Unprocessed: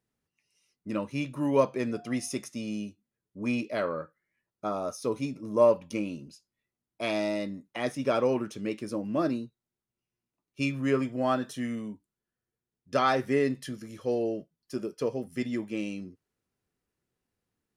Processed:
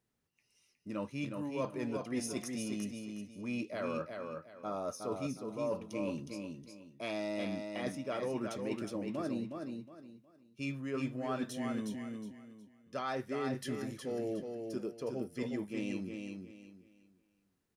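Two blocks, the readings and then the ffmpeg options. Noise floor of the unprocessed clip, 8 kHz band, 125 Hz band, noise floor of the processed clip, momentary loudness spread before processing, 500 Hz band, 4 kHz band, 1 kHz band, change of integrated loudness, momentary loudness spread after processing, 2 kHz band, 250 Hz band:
under -85 dBFS, -3.5 dB, -6.0 dB, -76 dBFS, 12 LU, -9.5 dB, -6.5 dB, -10.0 dB, -8.5 dB, 9 LU, -8.0 dB, -6.0 dB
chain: -af "areverse,acompressor=threshold=0.0178:ratio=6,areverse,aecho=1:1:364|728|1092|1456:0.562|0.157|0.0441|0.0123"

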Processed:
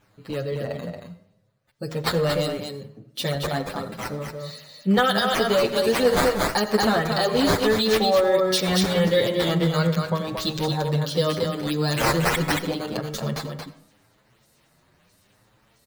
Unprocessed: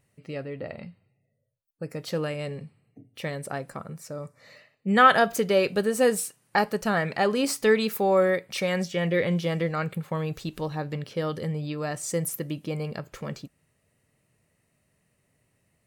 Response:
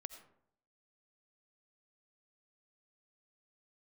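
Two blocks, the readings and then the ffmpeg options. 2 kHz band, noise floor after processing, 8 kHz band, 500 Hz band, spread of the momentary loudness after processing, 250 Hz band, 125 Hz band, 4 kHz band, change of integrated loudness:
+1.5 dB, -63 dBFS, +2.5 dB, +4.0 dB, 14 LU, +4.5 dB, +5.5 dB, +10.0 dB, +3.5 dB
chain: -filter_complex "[0:a]highshelf=f=3000:t=q:w=3:g=7.5,acrossover=split=3600[s0][s1];[s0]bandreject=f=79.18:t=h:w=4,bandreject=f=158.36:t=h:w=4,bandreject=f=237.54:t=h:w=4,bandreject=f=316.72:t=h:w=4,bandreject=f=395.9:t=h:w=4,bandreject=f=475.08:t=h:w=4,bandreject=f=554.26:t=h:w=4,bandreject=f=633.44:t=h:w=4,bandreject=f=712.62:t=h:w=4,bandreject=f=791.8:t=h:w=4,bandreject=f=870.98:t=h:w=4,bandreject=f=950.16:t=h:w=4,bandreject=f=1029.34:t=h:w=4,bandreject=f=1108.52:t=h:w=4,bandreject=f=1187.7:t=h:w=4,bandreject=f=1266.88:t=h:w=4,bandreject=f=1346.06:t=h:w=4,bandreject=f=1425.24:t=h:w=4,bandreject=f=1504.42:t=h:w=4,bandreject=f=1583.6:t=h:w=4,bandreject=f=1662.78:t=h:w=4,bandreject=f=1741.96:t=h:w=4,bandreject=f=1821.14:t=h:w=4,bandreject=f=1900.32:t=h:w=4,bandreject=f=1979.5:t=h:w=4,bandreject=f=2058.68:t=h:w=4,bandreject=f=2137.86:t=h:w=4,bandreject=f=2217.04:t=h:w=4,bandreject=f=2296.22:t=h:w=4[s2];[s1]acrusher=samples=9:mix=1:aa=0.000001:lfo=1:lforange=14.4:lforate=1.5[s3];[s2][s3]amix=inputs=2:normalize=0,aecho=1:1:228:0.531,asplit=2[s4][s5];[1:a]atrim=start_sample=2205[s6];[s5][s6]afir=irnorm=-1:irlink=0,volume=1.58[s7];[s4][s7]amix=inputs=2:normalize=0,alimiter=limit=0.299:level=0:latency=1:release=159,asplit=2[s8][s9];[s9]adelay=7.7,afreqshift=0.79[s10];[s8][s10]amix=inputs=2:normalize=1,volume=1.41"

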